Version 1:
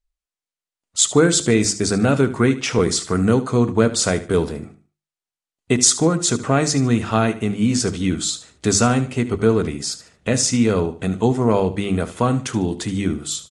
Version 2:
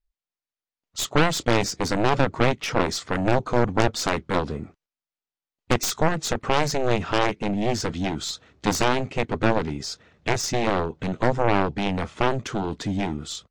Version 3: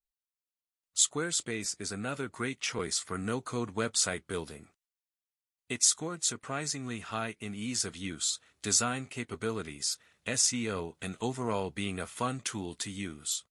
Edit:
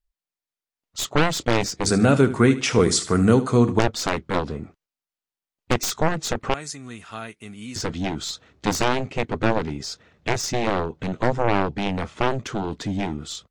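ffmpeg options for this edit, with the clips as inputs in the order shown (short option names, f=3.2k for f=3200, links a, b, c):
-filter_complex "[1:a]asplit=3[a][b][c];[a]atrim=end=1.862[d];[0:a]atrim=start=1.858:end=3.792[e];[b]atrim=start=3.788:end=6.542[f];[2:a]atrim=start=6.538:end=7.762[g];[c]atrim=start=7.758[h];[d][e]acrossfade=d=0.004:c1=hsin:c2=hsin[i];[i][f]acrossfade=d=0.004:c1=hsin:c2=hsin[j];[j][g]acrossfade=d=0.004:c1=hsin:c2=hsin[k];[k][h]acrossfade=d=0.004:c1=hsin:c2=hsin"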